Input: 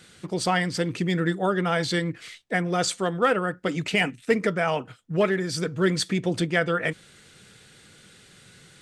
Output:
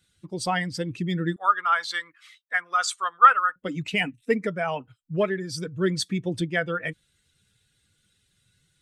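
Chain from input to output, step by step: per-bin expansion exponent 1.5; 1.36–3.56 resonant high-pass 1200 Hz, resonance Q 5.6

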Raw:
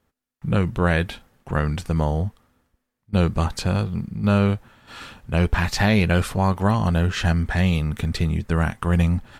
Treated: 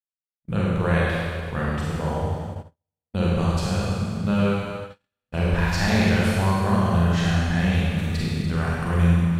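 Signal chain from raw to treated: Schroeder reverb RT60 2.1 s, combs from 32 ms, DRR -6 dB; gate -24 dBFS, range -47 dB; gain -7.5 dB

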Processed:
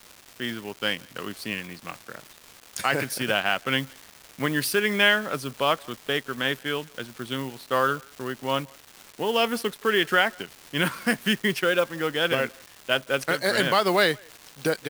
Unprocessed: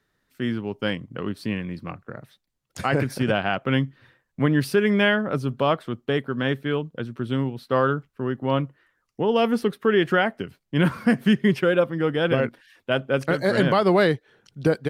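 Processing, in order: G.711 law mismatch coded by A; tilt +3.5 dB/oct; crackle 540/s -34 dBFS; speakerphone echo 0.17 s, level -27 dB

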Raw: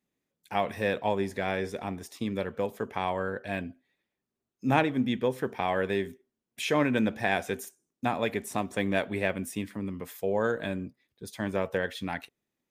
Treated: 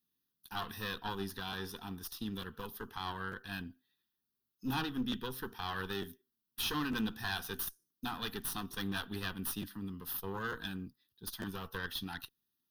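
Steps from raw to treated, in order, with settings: pre-emphasis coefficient 0.8; tube stage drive 37 dB, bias 0.75; fixed phaser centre 2200 Hz, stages 6; crackling interface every 0.90 s, samples 512, repeat, from 0.61; gain +12.5 dB

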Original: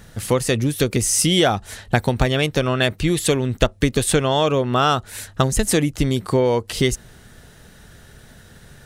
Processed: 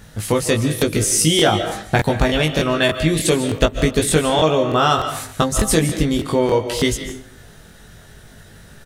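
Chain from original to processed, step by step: doubler 19 ms -3.5 dB; on a send at -8.5 dB: reverb RT60 0.65 s, pre-delay 0.11 s; on the sum: crackling interface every 0.30 s, samples 1024, repeat, from 0.77

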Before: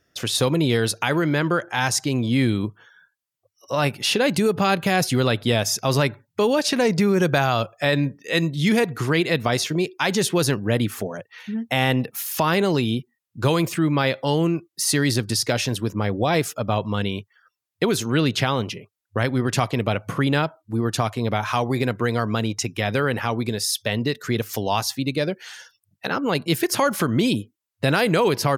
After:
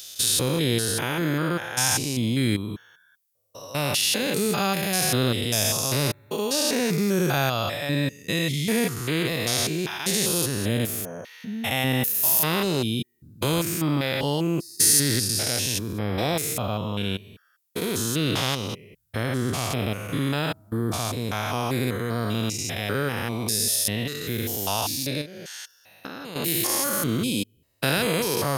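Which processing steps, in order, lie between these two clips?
stepped spectrum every 0.2 s; high shelf 11000 Hz +9 dB; 25.21–26.36 compressor 6:1, threshold -33 dBFS, peak gain reduction 9.5 dB; high shelf 3900 Hz +11.5 dB; gain -2 dB

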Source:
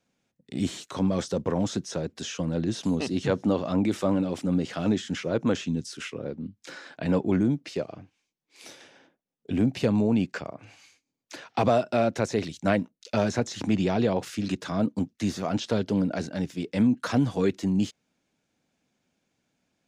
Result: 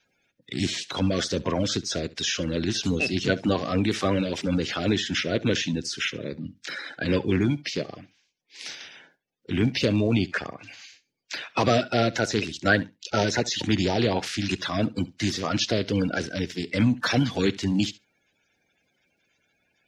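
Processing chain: bin magnitudes rounded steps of 30 dB; band shelf 3000 Hz +10 dB 2.3 oct; flutter echo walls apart 11.8 m, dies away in 0.21 s; gain +1 dB

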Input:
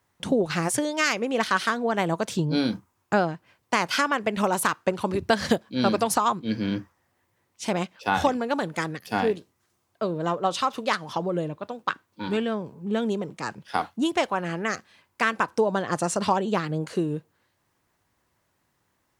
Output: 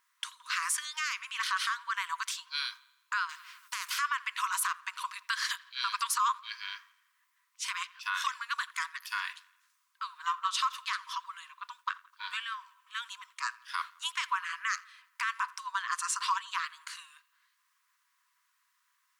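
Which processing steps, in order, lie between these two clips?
brick-wall FIR high-pass 950 Hz; limiter -19.5 dBFS, peak gain reduction 10.5 dB; on a send: dark delay 85 ms, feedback 54%, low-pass 3700 Hz, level -22 dB; 3.29–3.99 on the sum: spectral compressor 2:1

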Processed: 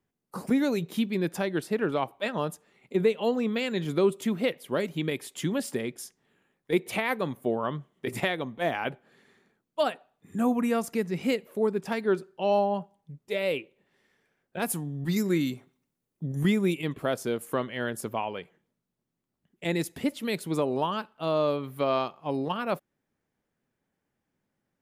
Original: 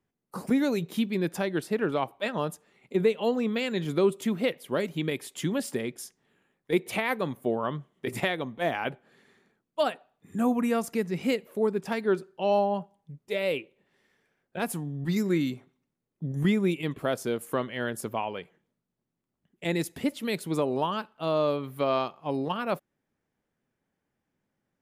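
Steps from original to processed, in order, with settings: 14.62–16.82 high shelf 6300 Hz +7.5 dB

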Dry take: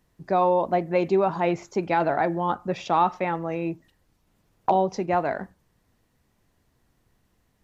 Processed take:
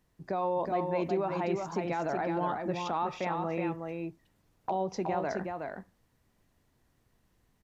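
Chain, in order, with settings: limiter -18 dBFS, peak gain reduction 7.5 dB; echo 0.369 s -4.5 dB; gain -4.5 dB

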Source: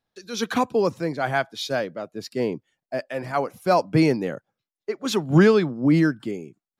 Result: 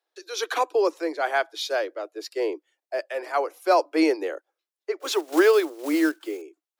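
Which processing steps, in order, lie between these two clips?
5–6.42 block floating point 5-bit; steep high-pass 310 Hz 96 dB/oct

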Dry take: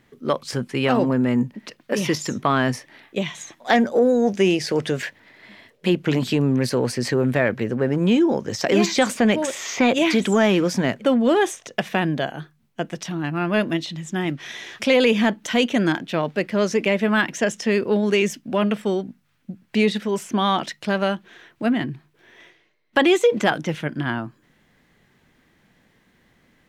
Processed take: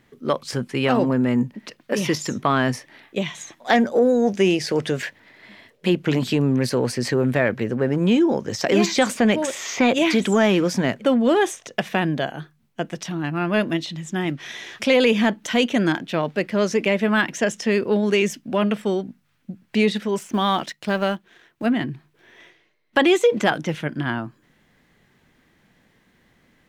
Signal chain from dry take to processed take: 20.19–21.66 G.711 law mismatch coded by A

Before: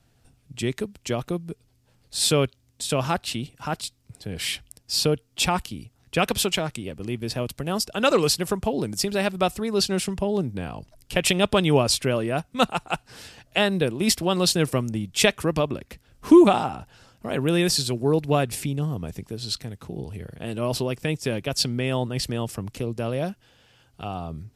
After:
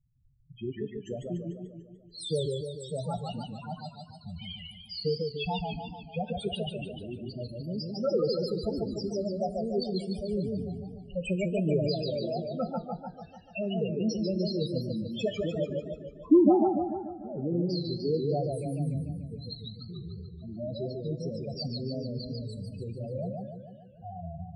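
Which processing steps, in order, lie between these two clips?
loudest bins only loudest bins 4; two-slope reverb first 0.41 s, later 1.8 s, from -17 dB, DRR 12.5 dB; warbling echo 0.147 s, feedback 57%, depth 146 cents, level -3.5 dB; gain -6 dB

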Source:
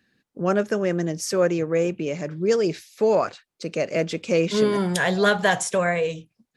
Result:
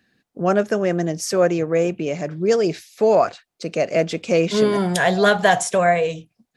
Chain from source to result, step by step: bell 700 Hz +8 dB 0.24 oct; gain +2.5 dB

